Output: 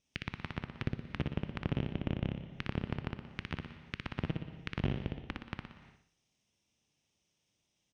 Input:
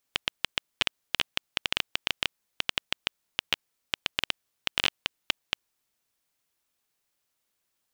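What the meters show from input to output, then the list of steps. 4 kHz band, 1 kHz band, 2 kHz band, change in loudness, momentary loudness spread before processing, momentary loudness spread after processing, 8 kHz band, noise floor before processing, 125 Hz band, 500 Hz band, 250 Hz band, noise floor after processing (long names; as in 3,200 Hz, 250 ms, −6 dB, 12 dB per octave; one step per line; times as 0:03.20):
−20.5 dB, −7.0 dB, −12.5 dB, −8.5 dB, 4 LU, 8 LU, below −20 dB, −79 dBFS, +15.0 dB, +0.5 dB, +10.5 dB, −81 dBFS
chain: lower of the sound and its delayed copy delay 0.33 ms
low-pass filter 6,700 Hz 24 dB per octave
treble cut that deepens with the level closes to 770 Hz, closed at −35.5 dBFS
high-pass filter 130 Hz 6 dB per octave
bass and treble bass +14 dB, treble +4 dB
brickwall limiter −17.5 dBFS, peak gain reduction 10 dB
repeating echo 60 ms, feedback 47%, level −3.5 dB
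reverb whose tail is shaped and stops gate 380 ms flat, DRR 11.5 dB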